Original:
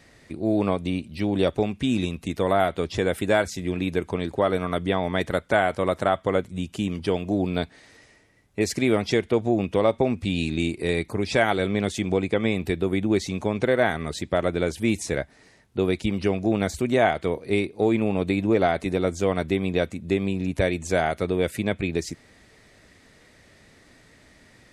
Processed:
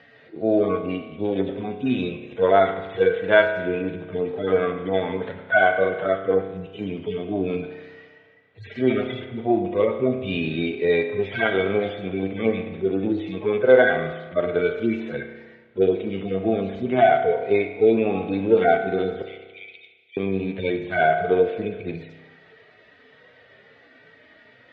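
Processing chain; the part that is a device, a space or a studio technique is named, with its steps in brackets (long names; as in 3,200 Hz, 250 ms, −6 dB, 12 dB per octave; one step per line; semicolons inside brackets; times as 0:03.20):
harmonic-percussive split with one part muted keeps harmonic
kitchen radio (loudspeaker in its box 180–3,600 Hz, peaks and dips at 200 Hz −6 dB, 310 Hz −5 dB, 460 Hz +7 dB, 730 Hz +3 dB, 1,500 Hz +6 dB, 3,100 Hz +5 dB)
0:19.22–0:20.17: Butterworth high-pass 2,100 Hz 96 dB per octave
spring reverb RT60 1.3 s, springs 31 ms, chirp 50 ms, DRR 6 dB
level +4 dB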